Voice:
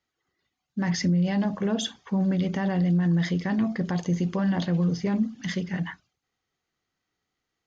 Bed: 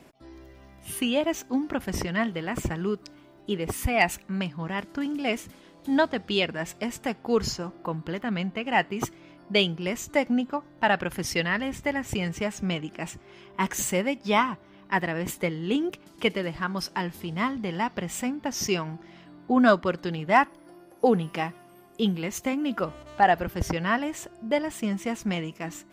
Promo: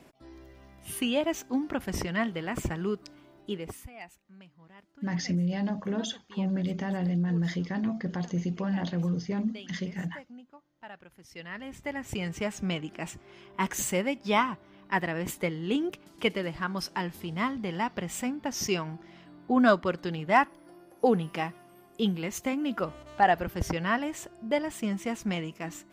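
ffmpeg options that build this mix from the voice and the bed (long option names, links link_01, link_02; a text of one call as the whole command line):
ffmpeg -i stem1.wav -i stem2.wav -filter_complex "[0:a]adelay=4250,volume=-5dB[link_01];[1:a]volume=18.5dB,afade=type=out:start_time=3.35:duration=0.55:silence=0.0891251,afade=type=in:start_time=11.28:duration=1.19:silence=0.0891251[link_02];[link_01][link_02]amix=inputs=2:normalize=0" out.wav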